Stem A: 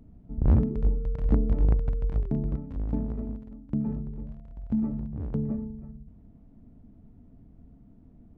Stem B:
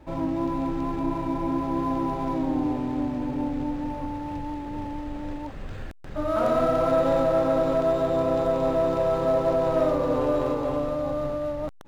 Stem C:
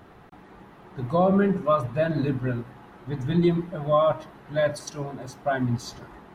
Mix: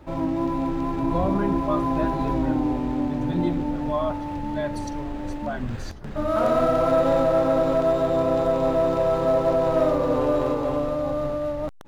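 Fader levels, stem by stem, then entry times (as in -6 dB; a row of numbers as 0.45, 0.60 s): -11.0, +2.0, -6.0 dB; 0.70, 0.00, 0.00 s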